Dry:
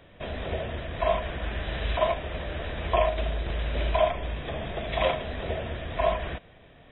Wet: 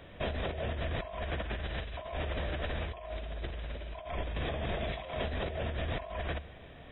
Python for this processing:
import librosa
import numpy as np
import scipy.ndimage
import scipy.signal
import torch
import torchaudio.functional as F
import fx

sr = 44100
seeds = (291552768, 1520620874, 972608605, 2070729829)

y = fx.peak_eq(x, sr, hz=72.0, db=7.0, octaves=0.21)
y = fx.over_compress(y, sr, threshold_db=-34.0, ratio=-1.0)
y = y * 10.0 ** (-3.0 / 20.0)